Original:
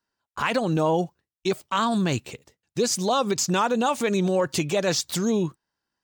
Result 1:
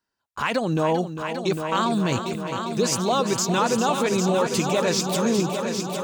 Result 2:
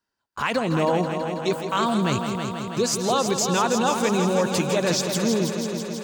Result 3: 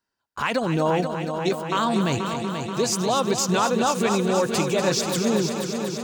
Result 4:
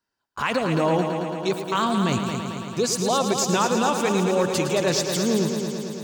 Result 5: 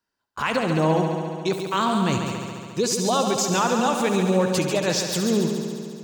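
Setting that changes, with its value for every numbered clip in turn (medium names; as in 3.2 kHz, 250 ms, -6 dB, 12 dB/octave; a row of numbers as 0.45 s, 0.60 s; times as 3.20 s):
multi-head delay, time: 401 ms, 163 ms, 241 ms, 111 ms, 70 ms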